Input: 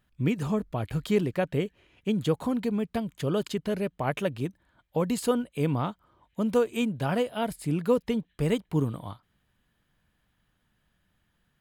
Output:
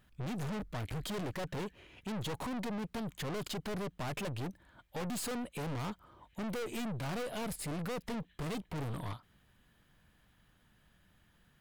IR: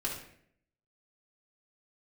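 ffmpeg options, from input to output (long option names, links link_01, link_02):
-af "aeval=exprs='(tanh(126*val(0)+0.35)-tanh(0.35))/126':channel_layout=same,volume=5.5dB"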